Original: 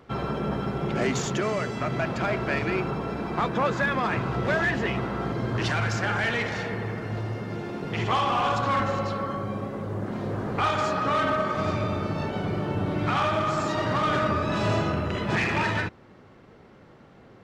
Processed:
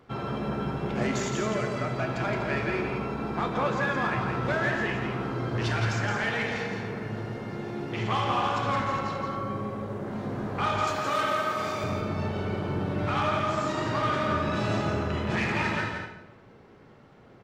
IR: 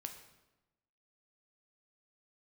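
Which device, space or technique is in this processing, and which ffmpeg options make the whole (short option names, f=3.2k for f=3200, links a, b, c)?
bathroom: -filter_complex "[0:a]asettb=1/sr,asplit=3[a][b][c];[a]atrim=end=10.874[d];[b]atrim=start=10.87:end=11.84,asetpts=PTS-STARTPTS,afade=t=in:d=0.004:c=qsin,afade=t=out:st=0.966:d=0.004:c=qsin,aemphasis=mode=production:type=bsi[e];[c]atrim=start=11.836[f];[d][e]acrossfade=d=0.004:c1=hsin:c2=qsin[g];[g][f]acrossfade=d=0.004:c1=qsin:c2=hsin,aecho=1:1:169|246:0.531|0.211[h];[1:a]atrim=start_sample=2205[i];[h][i]afir=irnorm=-1:irlink=0"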